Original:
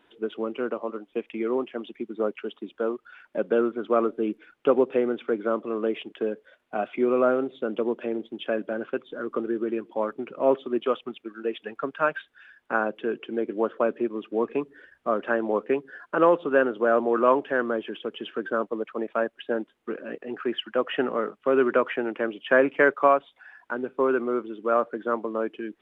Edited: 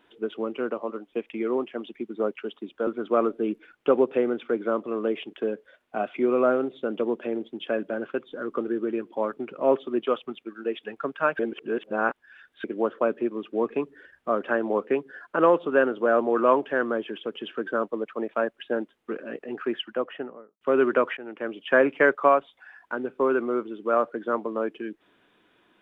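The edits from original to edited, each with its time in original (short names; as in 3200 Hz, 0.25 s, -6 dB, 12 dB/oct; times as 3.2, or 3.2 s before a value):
2.87–3.66 cut
12.18–13.43 reverse
20.46–21.4 studio fade out
21.96–22.46 fade in linear, from -16 dB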